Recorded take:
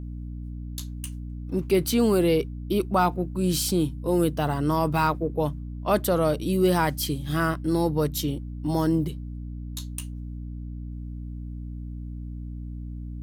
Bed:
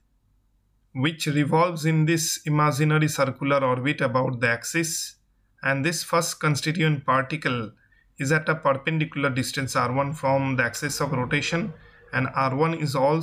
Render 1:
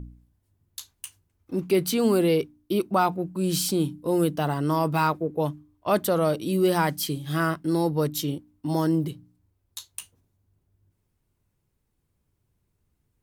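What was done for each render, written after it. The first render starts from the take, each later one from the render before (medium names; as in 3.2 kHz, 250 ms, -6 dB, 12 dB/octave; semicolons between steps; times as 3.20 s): de-hum 60 Hz, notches 5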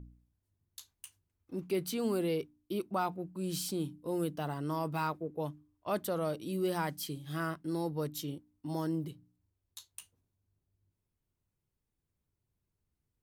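trim -11 dB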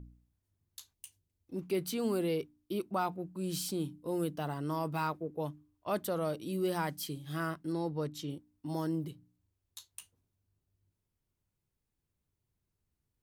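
0.93–1.56 s: peaking EQ 1.3 kHz -12 dB 1.1 oct; 7.72–8.30 s: distance through air 53 m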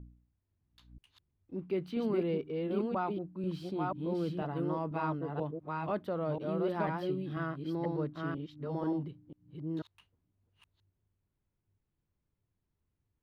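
chunks repeated in reverse 491 ms, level -2 dB; distance through air 380 m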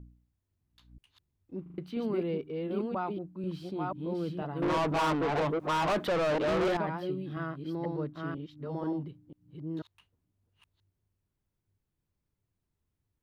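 1.62 s: stutter in place 0.04 s, 4 plays; 4.62–6.77 s: overdrive pedal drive 29 dB, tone 4.6 kHz, clips at -21.5 dBFS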